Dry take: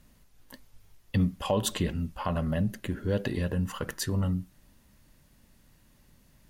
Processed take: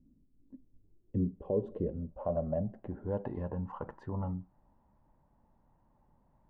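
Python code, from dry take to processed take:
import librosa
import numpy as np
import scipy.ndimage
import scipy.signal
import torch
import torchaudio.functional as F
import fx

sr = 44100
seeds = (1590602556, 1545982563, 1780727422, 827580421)

y = fx.filter_sweep_lowpass(x, sr, from_hz=280.0, to_hz=880.0, start_s=0.55, end_s=3.18, q=4.5)
y = y * 10.0 ** (-8.5 / 20.0)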